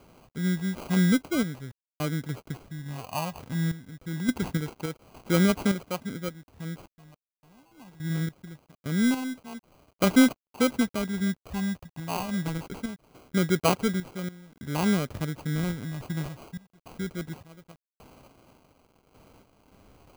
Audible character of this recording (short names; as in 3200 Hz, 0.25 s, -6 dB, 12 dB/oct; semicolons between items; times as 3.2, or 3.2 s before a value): random-step tremolo, depth 100%; a quantiser's noise floor 10-bit, dither none; phasing stages 4, 0.23 Hz, lowest notch 420–4700 Hz; aliases and images of a low sample rate 1800 Hz, jitter 0%